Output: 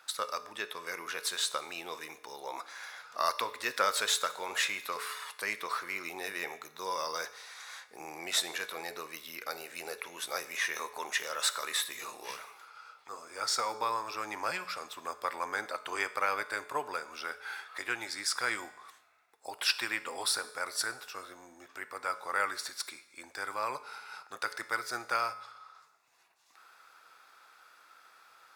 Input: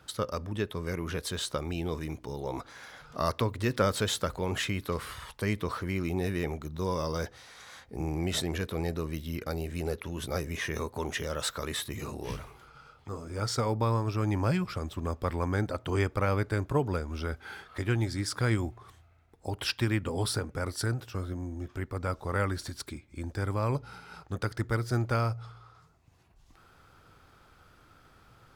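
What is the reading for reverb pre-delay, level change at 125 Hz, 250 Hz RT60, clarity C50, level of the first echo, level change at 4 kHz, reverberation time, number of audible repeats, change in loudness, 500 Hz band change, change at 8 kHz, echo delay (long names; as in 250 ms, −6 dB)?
5 ms, −32.0 dB, 0.85 s, 15.0 dB, no echo audible, +3.0 dB, 0.85 s, no echo audible, −2.0 dB, −8.0 dB, +3.5 dB, no echo audible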